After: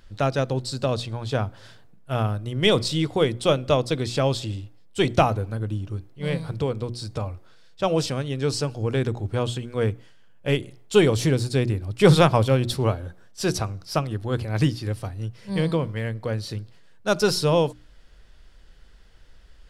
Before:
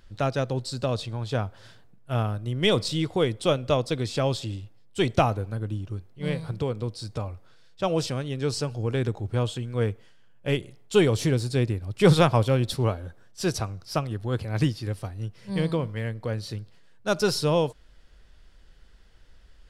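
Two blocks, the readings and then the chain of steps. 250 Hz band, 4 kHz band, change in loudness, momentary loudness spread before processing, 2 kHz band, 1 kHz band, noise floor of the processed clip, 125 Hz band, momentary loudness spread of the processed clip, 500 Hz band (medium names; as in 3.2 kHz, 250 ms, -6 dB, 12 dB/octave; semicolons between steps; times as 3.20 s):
+2.5 dB, +3.0 dB, +2.5 dB, 12 LU, +3.0 dB, +3.0 dB, -50 dBFS, +2.0 dB, 12 LU, +3.0 dB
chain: hum notches 60/120/180/240/300/360 Hz; trim +3 dB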